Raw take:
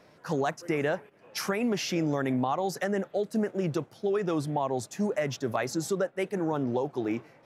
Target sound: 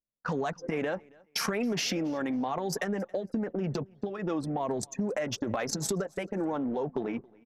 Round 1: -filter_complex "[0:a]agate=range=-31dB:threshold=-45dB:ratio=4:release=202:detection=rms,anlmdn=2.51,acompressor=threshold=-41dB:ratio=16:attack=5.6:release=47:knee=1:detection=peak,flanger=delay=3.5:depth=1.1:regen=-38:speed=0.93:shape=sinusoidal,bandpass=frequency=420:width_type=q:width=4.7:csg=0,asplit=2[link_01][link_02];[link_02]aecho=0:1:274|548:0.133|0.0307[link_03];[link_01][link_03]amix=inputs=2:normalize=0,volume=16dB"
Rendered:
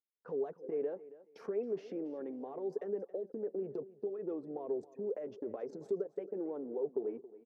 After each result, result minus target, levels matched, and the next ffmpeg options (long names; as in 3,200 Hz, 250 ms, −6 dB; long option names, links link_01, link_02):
echo-to-direct +8.5 dB; 500 Hz band +4.0 dB
-filter_complex "[0:a]agate=range=-31dB:threshold=-45dB:ratio=4:release=202:detection=rms,anlmdn=2.51,acompressor=threshold=-41dB:ratio=16:attack=5.6:release=47:knee=1:detection=peak,flanger=delay=3.5:depth=1.1:regen=-38:speed=0.93:shape=sinusoidal,bandpass=frequency=420:width_type=q:width=4.7:csg=0,asplit=2[link_01][link_02];[link_02]aecho=0:1:274|548:0.0501|0.0115[link_03];[link_01][link_03]amix=inputs=2:normalize=0,volume=16dB"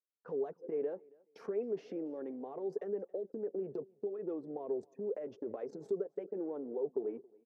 500 Hz band +4.0 dB
-filter_complex "[0:a]agate=range=-31dB:threshold=-45dB:ratio=4:release=202:detection=rms,anlmdn=2.51,acompressor=threshold=-41dB:ratio=16:attack=5.6:release=47:knee=1:detection=peak,flanger=delay=3.5:depth=1.1:regen=-38:speed=0.93:shape=sinusoidal,asplit=2[link_01][link_02];[link_02]aecho=0:1:274|548:0.0501|0.0115[link_03];[link_01][link_03]amix=inputs=2:normalize=0,volume=16dB"